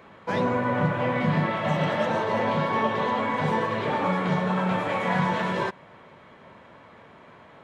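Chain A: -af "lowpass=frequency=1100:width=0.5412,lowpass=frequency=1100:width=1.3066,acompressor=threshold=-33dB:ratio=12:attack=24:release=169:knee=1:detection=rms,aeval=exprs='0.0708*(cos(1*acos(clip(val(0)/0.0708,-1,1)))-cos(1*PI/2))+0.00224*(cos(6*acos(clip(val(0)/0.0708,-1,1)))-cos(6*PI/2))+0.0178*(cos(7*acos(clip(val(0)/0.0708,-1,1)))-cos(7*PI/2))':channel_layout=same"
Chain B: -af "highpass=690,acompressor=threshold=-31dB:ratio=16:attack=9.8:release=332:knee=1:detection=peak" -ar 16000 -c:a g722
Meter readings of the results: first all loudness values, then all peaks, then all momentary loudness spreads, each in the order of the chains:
−37.5, −35.0 LKFS; −23.5, −22.5 dBFS; 18, 17 LU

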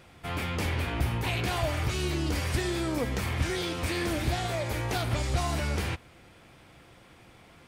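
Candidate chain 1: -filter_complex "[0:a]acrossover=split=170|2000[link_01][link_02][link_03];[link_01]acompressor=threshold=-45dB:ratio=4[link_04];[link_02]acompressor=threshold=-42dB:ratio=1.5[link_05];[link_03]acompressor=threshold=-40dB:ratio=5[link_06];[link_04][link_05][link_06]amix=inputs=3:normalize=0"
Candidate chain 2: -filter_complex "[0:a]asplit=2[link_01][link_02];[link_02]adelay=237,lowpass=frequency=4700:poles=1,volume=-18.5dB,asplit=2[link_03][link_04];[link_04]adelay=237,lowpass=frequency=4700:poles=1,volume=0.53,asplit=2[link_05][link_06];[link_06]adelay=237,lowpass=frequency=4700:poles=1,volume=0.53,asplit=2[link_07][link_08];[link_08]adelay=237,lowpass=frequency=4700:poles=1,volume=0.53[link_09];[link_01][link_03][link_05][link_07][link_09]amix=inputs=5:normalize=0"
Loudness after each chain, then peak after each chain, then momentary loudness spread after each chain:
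−35.5, −30.0 LKFS; −20.0, −17.0 dBFS; 19, 3 LU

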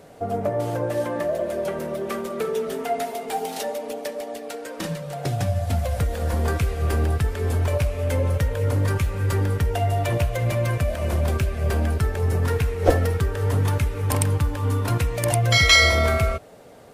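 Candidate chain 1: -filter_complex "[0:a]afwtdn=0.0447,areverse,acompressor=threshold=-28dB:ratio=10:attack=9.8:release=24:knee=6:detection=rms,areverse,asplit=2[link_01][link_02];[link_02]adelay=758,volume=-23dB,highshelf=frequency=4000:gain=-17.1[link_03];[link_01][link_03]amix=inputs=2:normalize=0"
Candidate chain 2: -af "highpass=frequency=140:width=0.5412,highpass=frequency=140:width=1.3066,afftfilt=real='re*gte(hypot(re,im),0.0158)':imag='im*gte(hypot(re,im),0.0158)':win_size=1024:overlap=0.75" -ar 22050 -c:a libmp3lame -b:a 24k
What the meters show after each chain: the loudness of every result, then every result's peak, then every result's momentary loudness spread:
−31.0, −26.0 LKFS; −18.5, −1.5 dBFS; 3, 8 LU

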